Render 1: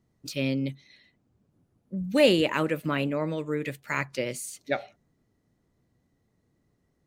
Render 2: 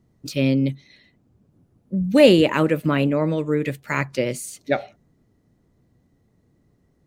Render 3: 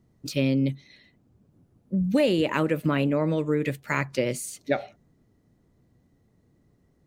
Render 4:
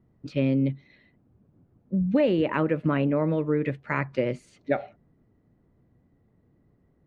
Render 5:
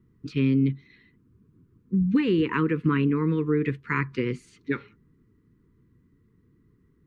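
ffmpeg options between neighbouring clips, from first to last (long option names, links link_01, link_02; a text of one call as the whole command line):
ffmpeg -i in.wav -af "tiltshelf=frequency=690:gain=3,volume=6.5dB" out.wav
ffmpeg -i in.wav -af "acompressor=threshold=-17dB:ratio=6,volume=-1.5dB" out.wav
ffmpeg -i in.wav -af "lowpass=2100" out.wav
ffmpeg -i in.wav -af "asuperstop=centerf=670:order=8:qfactor=1.3,volume=2dB" out.wav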